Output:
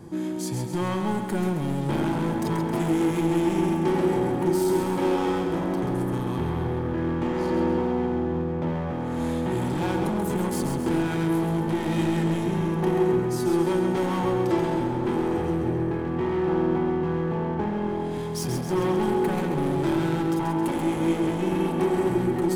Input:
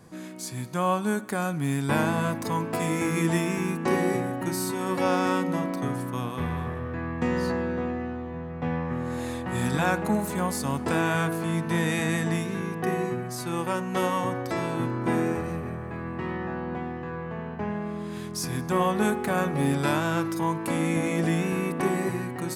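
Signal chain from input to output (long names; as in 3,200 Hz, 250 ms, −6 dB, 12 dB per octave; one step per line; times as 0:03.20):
low-shelf EQ 360 Hz +9 dB
downward compressor 2 to 1, threshold −23 dBFS, peak gain reduction 5.5 dB
gain into a clipping stage and back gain 27 dB
hollow resonant body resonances 350/860/3,200 Hz, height 12 dB, ringing for 50 ms
on a send: echo with a time of its own for lows and highs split 400 Hz, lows 286 ms, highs 134 ms, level −6 dB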